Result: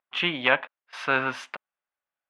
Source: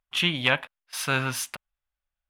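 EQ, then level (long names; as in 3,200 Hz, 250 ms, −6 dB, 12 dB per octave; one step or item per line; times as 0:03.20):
band-pass filter 310–2,200 Hz
+4.0 dB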